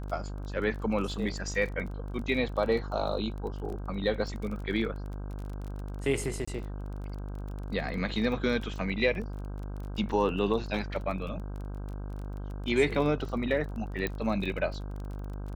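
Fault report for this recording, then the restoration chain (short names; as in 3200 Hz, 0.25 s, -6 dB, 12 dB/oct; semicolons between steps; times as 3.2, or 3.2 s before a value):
buzz 50 Hz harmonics 32 -37 dBFS
crackle 24/s -37 dBFS
6.45–6.47 gap 25 ms
14.07 pop -17 dBFS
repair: de-click; de-hum 50 Hz, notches 32; interpolate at 6.45, 25 ms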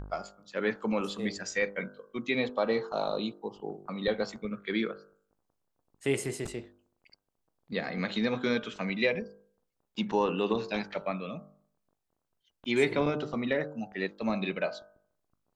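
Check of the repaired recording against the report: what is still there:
none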